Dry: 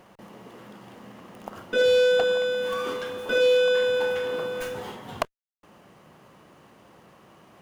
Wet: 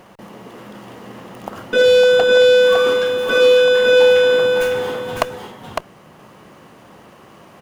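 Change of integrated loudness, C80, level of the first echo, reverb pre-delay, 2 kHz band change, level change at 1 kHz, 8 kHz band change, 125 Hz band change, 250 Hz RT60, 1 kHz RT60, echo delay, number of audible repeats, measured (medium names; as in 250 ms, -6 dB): +10.5 dB, no reverb, -4.5 dB, no reverb, +10.5 dB, +9.5 dB, no reading, no reading, no reverb, no reverb, 556 ms, 1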